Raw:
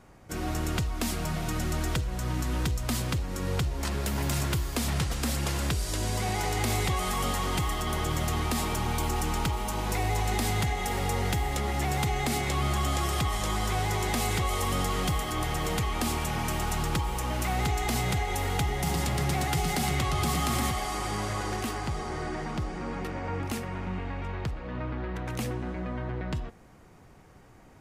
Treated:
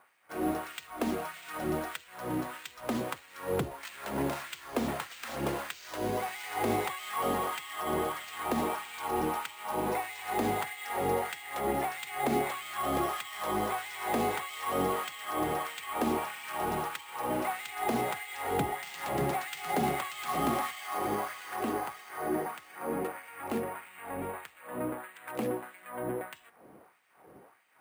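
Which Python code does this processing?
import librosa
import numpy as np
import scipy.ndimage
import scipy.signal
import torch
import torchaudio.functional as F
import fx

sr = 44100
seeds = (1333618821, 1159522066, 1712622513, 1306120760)

y = scipy.signal.sosfilt(scipy.signal.butter(2, 4800.0, 'lowpass', fs=sr, output='sos'), x)
y = fx.tilt_eq(y, sr, slope=-3.5)
y = fx.hum_notches(y, sr, base_hz=60, count=7)
y = fx.filter_lfo_highpass(y, sr, shape='sine', hz=1.6, low_hz=330.0, high_hz=2500.0, q=1.2)
y = np.repeat(y[::4], 4)[:len(y)]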